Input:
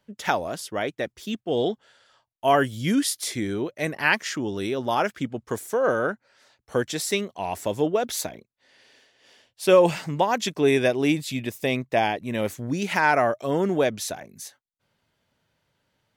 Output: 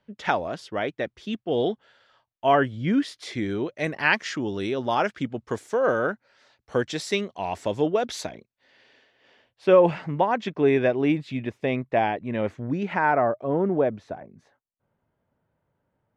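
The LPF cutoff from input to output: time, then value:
2.46 s 3700 Hz
2.79 s 1900 Hz
3.64 s 5100 Hz
8.3 s 5100 Hz
9.63 s 2100 Hz
12.66 s 2100 Hz
13.35 s 1100 Hz

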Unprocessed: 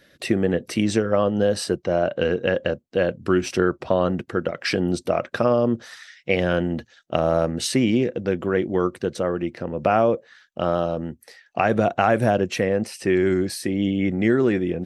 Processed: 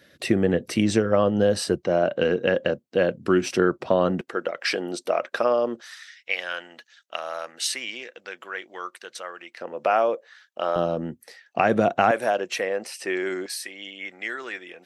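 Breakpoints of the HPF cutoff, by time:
53 Hz
from 1.84 s 140 Hz
from 4.21 s 450 Hz
from 5.81 s 1300 Hz
from 9.61 s 550 Hz
from 10.76 s 140 Hz
from 12.11 s 560 Hz
from 13.46 s 1200 Hz

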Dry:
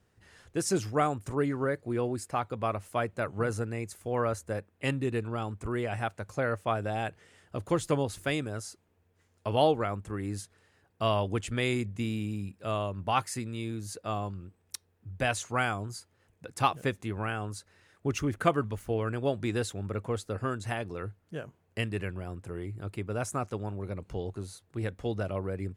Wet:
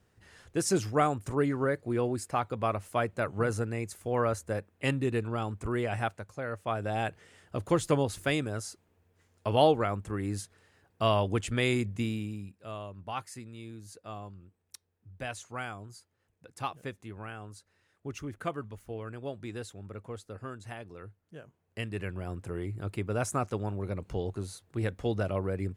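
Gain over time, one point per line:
6.09 s +1 dB
6.34 s -8 dB
7 s +1.5 dB
11.99 s +1.5 dB
12.66 s -9 dB
21.46 s -9 dB
22.31 s +2 dB

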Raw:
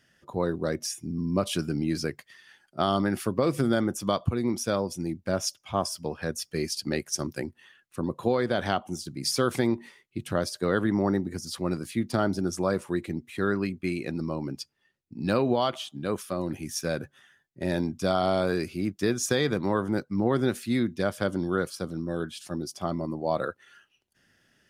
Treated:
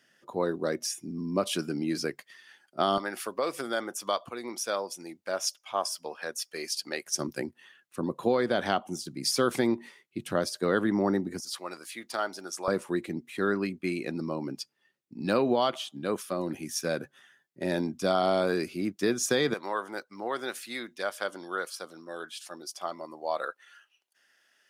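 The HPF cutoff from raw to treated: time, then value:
240 Hz
from 2.98 s 580 Hz
from 7.06 s 180 Hz
from 11.4 s 740 Hz
from 12.68 s 200 Hz
from 19.54 s 680 Hz

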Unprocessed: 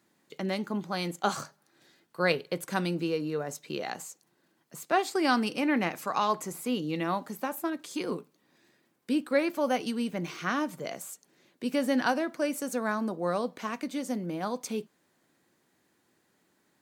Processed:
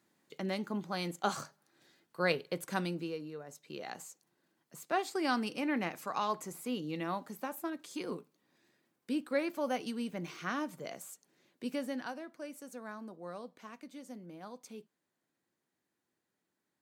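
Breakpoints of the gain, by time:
2.78 s -4.5 dB
3.43 s -14 dB
3.98 s -6.5 dB
11.67 s -6.5 dB
12.09 s -15 dB

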